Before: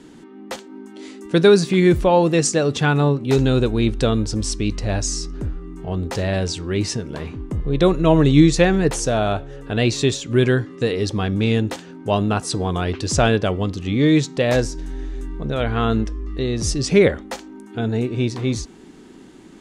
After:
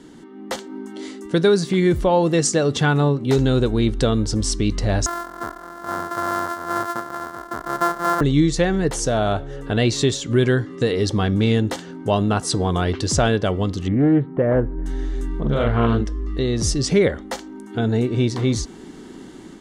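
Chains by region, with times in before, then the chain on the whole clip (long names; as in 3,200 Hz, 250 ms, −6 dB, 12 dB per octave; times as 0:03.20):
0:05.06–0:08.21: samples sorted by size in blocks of 128 samples + high-pass filter 1,100 Hz 6 dB per octave + high shelf with overshoot 1,900 Hz −10.5 dB, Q 3
0:13.88–0:14.86: Gaussian smoothing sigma 5.3 samples + highs frequency-modulated by the lows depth 0.23 ms
0:15.40–0:16.01: high-shelf EQ 4,200 Hz −10 dB + double-tracking delay 43 ms −2 dB + highs frequency-modulated by the lows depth 0.33 ms
whole clip: automatic gain control gain up to 5 dB; notch filter 2,500 Hz, Q 8.1; downward compressor 1.5 to 1, threshold −20 dBFS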